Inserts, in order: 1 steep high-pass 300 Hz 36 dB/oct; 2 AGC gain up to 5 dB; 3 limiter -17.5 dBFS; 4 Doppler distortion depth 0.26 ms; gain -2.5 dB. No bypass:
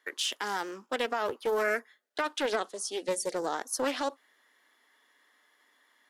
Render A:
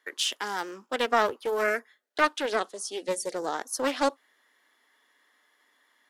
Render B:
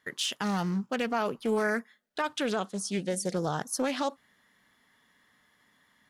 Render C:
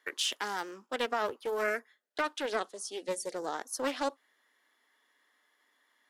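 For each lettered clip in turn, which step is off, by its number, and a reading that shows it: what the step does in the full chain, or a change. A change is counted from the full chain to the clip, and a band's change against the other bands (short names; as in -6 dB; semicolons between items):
3, crest factor change +8.5 dB; 1, 125 Hz band +19.0 dB; 2, momentary loudness spread change +2 LU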